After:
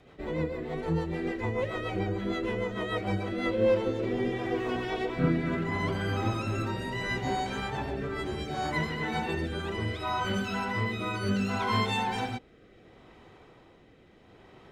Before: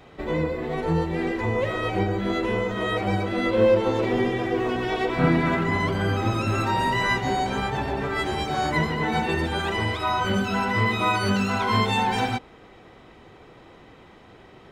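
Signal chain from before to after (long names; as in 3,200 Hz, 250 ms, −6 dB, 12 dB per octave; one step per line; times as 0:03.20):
rotating-speaker cabinet horn 6.7 Hz, later 0.7 Hz, at 0:03.08
level −4.5 dB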